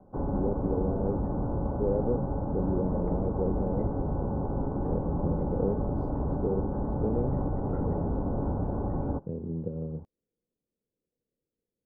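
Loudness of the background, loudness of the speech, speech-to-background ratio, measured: -31.5 LUFS, -34.5 LUFS, -3.0 dB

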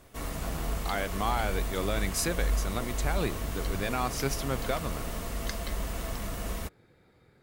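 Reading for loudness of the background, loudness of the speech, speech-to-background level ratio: -35.0 LUFS, -33.5 LUFS, 1.5 dB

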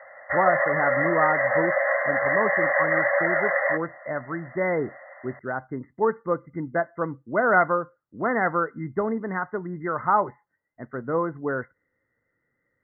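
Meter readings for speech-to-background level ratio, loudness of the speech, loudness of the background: -4.5 dB, -27.0 LUFS, -22.5 LUFS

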